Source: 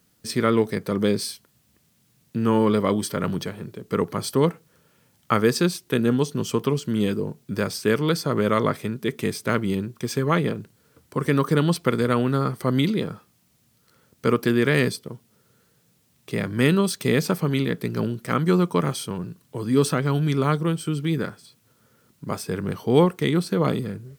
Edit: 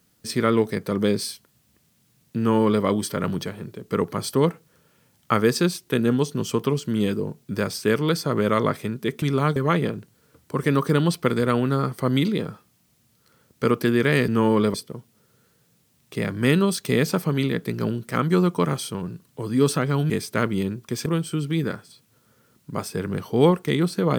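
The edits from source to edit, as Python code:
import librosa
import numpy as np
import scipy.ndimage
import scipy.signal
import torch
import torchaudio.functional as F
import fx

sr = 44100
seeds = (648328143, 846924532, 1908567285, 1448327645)

y = fx.edit(x, sr, fx.duplicate(start_s=2.38, length_s=0.46, to_s=14.9),
    fx.swap(start_s=9.22, length_s=0.96, other_s=20.26, other_length_s=0.34), tone=tone)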